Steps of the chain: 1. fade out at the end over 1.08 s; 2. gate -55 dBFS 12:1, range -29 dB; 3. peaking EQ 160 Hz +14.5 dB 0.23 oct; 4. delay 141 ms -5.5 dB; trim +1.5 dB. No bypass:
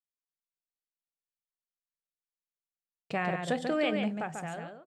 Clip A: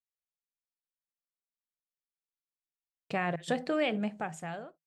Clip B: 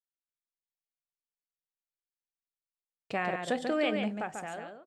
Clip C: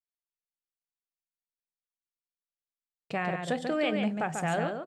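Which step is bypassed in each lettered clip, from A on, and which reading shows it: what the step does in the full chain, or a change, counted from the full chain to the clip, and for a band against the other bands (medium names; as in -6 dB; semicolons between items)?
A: 4, loudness change -1.0 LU; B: 3, 125 Hz band -5.0 dB; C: 1, 8 kHz band +3.0 dB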